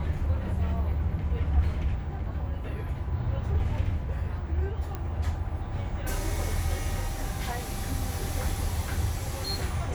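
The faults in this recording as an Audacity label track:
4.950000	4.950000	pop -20 dBFS

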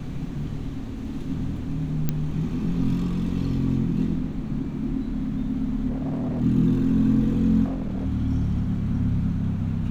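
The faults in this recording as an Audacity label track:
2.090000	2.090000	pop -10 dBFS
5.890000	6.420000	clipped -24 dBFS
7.640000	8.060000	clipped -24.5 dBFS

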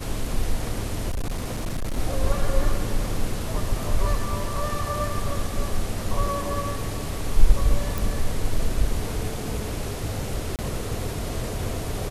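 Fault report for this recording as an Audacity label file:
1.110000	1.990000	clipped -23 dBFS
7.980000	7.980000	pop
10.560000	10.590000	gap 28 ms

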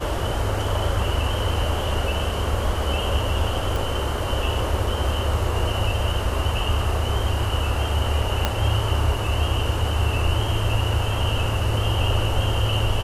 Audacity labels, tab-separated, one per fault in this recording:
3.760000	3.760000	pop
8.450000	8.450000	pop -5 dBFS

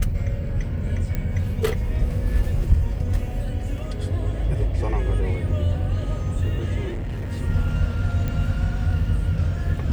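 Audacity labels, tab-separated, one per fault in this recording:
1.150000	1.150000	pop -14 dBFS
6.880000	7.310000	clipped -25 dBFS
8.280000	8.280000	pop -15 dBFS

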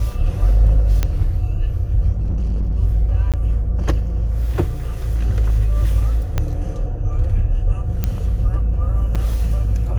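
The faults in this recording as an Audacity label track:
1.030000	1.030000	pop -6 dBFS
2.170000	2.760000	clipped -16.5 dBFS
3.320000	3.340000	gap 17 ms
6.380000	6.380000	pop -7 dBFS
8.040000	8.040000	pop -7 dBFS
9.150000	9.160000	gap 5.7 ms

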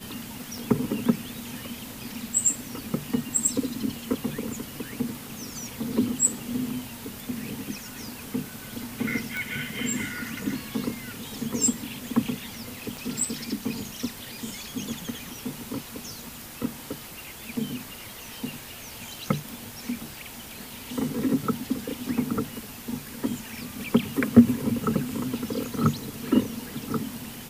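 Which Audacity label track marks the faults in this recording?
0.580000	0.580000	pop
9.370000	9.370000	pop
12.970000	12.970000	pop

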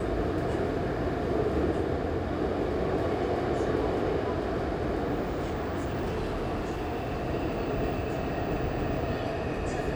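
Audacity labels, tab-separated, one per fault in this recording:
5.220000	7.270000	clipped -27.5 dBFS

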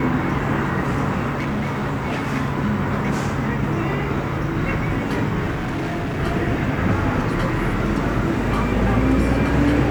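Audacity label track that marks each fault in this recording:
1.360000	2.280000	clipped -19.5 dBFS
5.500000	6.200000	clipped -21 dBFS

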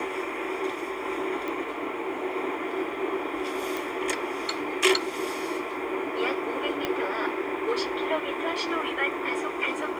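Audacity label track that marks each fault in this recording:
1.480000	1.480000	pop
3.770000	3.770000	pop
6.850000	6.850000	pop -13 dBFS

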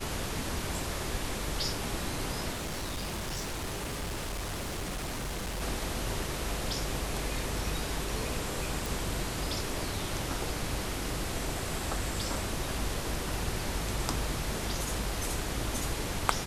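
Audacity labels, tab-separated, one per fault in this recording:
2.520000	5.620000	clipped -32 dBFS
8.860000	8.860000	pop

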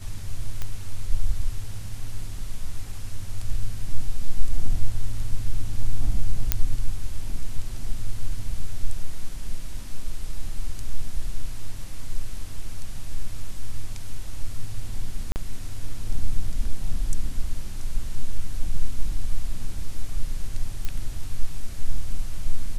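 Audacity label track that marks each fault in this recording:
0.620000	0.620000	pop -15 dBFS
6.520000	6.520000	pop -3 dBFS
15.320000	15.360000	gap 39 ms
20.850000	20.850000	pop -15 dBFS

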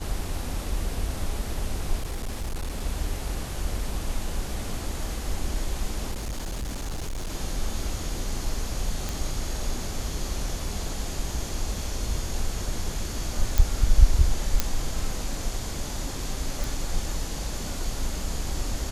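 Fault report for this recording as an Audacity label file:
1.990000	2.820000	clipped -26 dBFS
6.110000	7.320000	clipped -27.5 dBFS
9.090000	9.090000	pop
13.580000	13.580000	pop
14.600000	14.600000	pop -6 dBFS
16.640000	16.640000	pop

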